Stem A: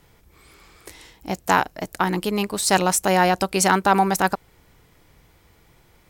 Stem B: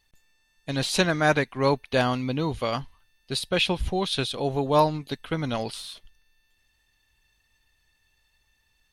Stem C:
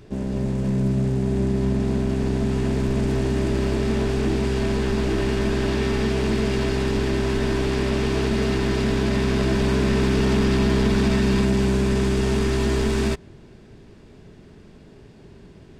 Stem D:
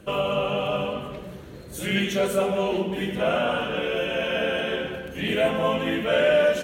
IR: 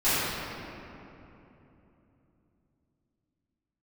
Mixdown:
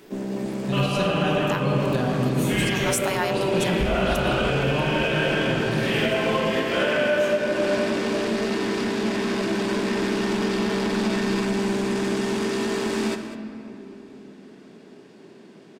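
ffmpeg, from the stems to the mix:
-filter_complex "[0:a]highpass=950,volume=2.5dB[link_01];[1:a]equalizer=frequency=77:width=0.37:gain=14,volume=-9dB,asplit=3[link_02][link_03][link_04];[link_03]volume=-13.5dB[link_05];[2:a]highpass=frequency=200:width=0.5412,highpass=frequency=200:width=1.3066,asoftclip=type=tanh:threshold=-19.5dB,volume=0.5dB,asplit=3[link_06][link_07][link_08];[link_07]volume=-23dB[link_09];[link_08]volume=-13dB[link_10];[3:a]lowshelf=frequency=450:gain=-9.5,adelay=650,volume=-0.5dB,asplit=2[link_11][link_12];[link_12]volume=-9.5dB[link_13];[link_04]apad=whole_len=268830[link_14];[link_01][link_14]sidechaincompress=threshold=-41dB:ratio=8:attack=16:release=154[link_15];[4:a]atrim=start_sample=2205[link_16];[link_05][link_09][link_13]amix=inputs=3:normalize=0[link_17];[link_17][link_16]afir=irnorm=-1:irlink=0[link_18];[link_10]aecho=0:1:199:1[link_19];[link_15][link_02][link_06][link_11][link_18][link_19]amix=inputs=6:normalize=0,alimiter=limit=-12.5dB:level=0:latency=1:release=341"

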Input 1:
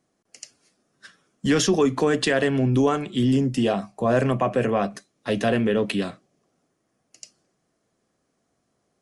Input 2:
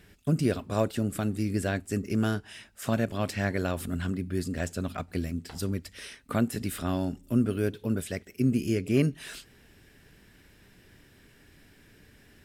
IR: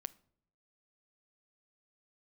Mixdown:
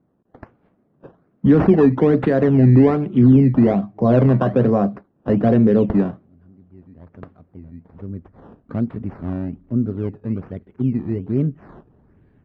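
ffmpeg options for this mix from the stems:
-filter_complex "[0:a]volume=-1dB,asplit=2[link_01][link_02];[1:a]adelay=2400,volume=-5.5dB[link_03];[link_02]apad=whole_len=654852[link_04];[link_03][link_04]sidechaincompress=threshold=-54dB:ratio=6:attack=16:release=959[link_05];[link_01][link_05]amix=inputs=2:normalize=0,acrusher=samples=14:mix=1:aa=0.000001:lfo=1:lforange=14:lforate=1.2,lowpass=1400,equalizer=frequency=140:width=0.31:gain=11.5"

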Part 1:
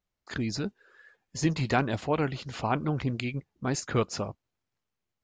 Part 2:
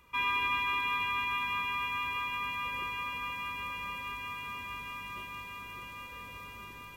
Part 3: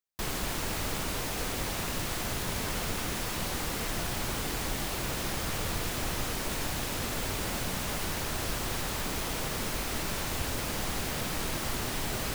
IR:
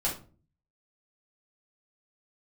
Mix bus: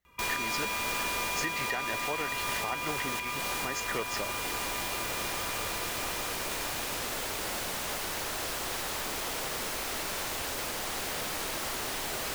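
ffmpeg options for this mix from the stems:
-filter_complex "[0:a]equalizer=frequency=1900:width=6:gain=14.5,volume=0.5dB[link_01];[1:a]volume=33.5dB,asoftclip=hard,volume=-33.5dB,adelay=50,volume=1dB[link_02];[2:a]volume=0.5dB[link_03];[link_01][link_03]amix=inputs=2:normalize=0,acrossover=split=340|3000[link_04][link_05][link_06];[link_04]acompressor=threshold=-55dB:ratio=2[link_07];[link_07][link_05][link_06]amix=inputs=3:normalize=0,alimiter=limit=-22.5dB:level=0:latency=1:release=261,volume=0dB[link_08];[link_02][link_08]amix=inputs=2:normalize=0"

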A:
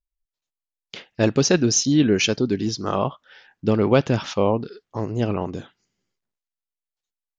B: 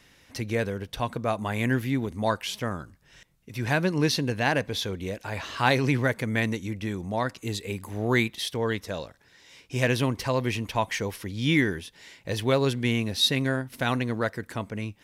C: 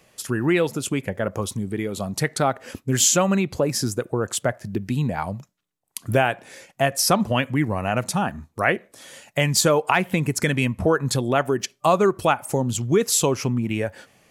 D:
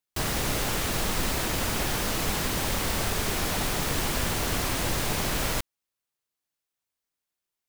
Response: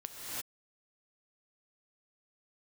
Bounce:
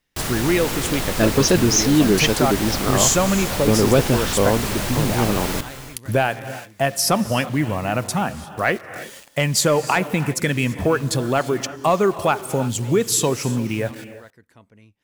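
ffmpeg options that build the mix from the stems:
-filter_complex "[0:a]volume=2.5dB[link_01];[1:a]volume=-18dB[link_02];[2:a]acrusher=bits=6:mix=0:aa=0.000001,volume=0dB,asplit=2[link_03][link_04];[link_04]volume=-13dB[link_05];[3:a]volume=0.5dB,asplit=2[link_06][link_07];[link_07]volume=-9.5dB[link_08];[4:a]atrim=start_sample=2205[link_09];[link_05][link_08]amix=inputs=2:normalize=0[link_10];[link_10][link_09]afir=irnorm=-1:irlink=0[link_11];[link_01][link_02][link_03][link_06][link_11]amix=inputs=5:normalize=0,asoftclip=type=tanh:threshold=-5dB"

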